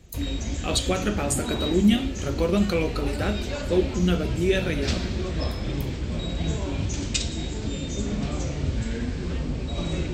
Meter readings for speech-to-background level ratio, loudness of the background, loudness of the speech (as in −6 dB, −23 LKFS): 4.0 dB, −29.5 LKFS, −25.5 LKFS